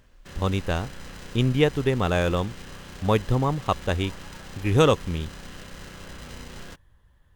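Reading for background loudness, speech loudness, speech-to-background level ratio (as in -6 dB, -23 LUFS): -42.0 LUFS, -25.0 LUFS, 17.0 dB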